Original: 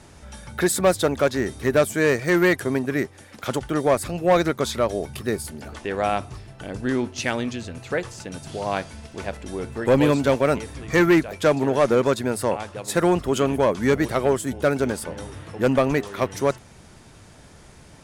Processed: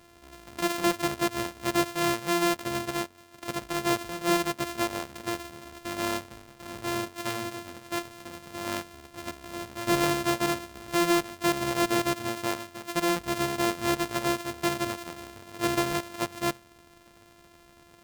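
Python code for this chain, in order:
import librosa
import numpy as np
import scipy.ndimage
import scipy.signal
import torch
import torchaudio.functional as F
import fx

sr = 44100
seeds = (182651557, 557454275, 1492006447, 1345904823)

y = np.r_[np.sort(x[:len(x) // 128 * 128].reshape(-1, 128), axis=1).ravel(), x[len(x) // 128 * 128:]]
y = fx.low_shelf(y, sr, hz=210.0, db=-9.0)
y = F.gain(torch.from_numpy(y), -5.5).numpy()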